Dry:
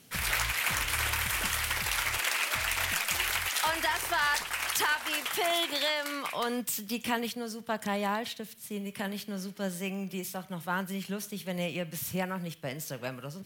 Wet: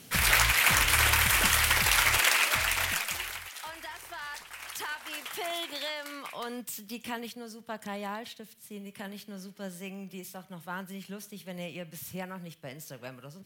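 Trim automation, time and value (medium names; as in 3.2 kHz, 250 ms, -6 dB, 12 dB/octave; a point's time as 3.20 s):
2.23 s +6.5 dB
2.97 s 0 dB
3.53 s -12.5 dB
4.27 s -12.5 dB
5.28 s -6 dB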